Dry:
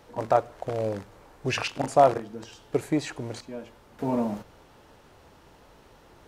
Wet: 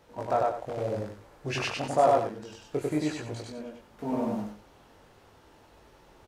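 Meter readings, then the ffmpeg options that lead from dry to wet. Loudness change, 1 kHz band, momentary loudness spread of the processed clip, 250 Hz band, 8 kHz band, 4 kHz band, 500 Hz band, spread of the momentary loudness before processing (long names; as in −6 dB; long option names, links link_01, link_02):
−2.5 dB, −2.0 dB, 18 LU, −2.0 dB, −2.5 dB, −2.0 dB, −2.0 dB, 18 LU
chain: -filter_complex "[0:a]flanger=delay=18.5:depth=3.4:speed=0.93,asplit=2[link_01][link_02];[link_02]aecho=0:1:96.21|186.6:0.891|0.282[link_03];[link_01][link_03]amix=inputs=2:normalize=0,volume=-2dB"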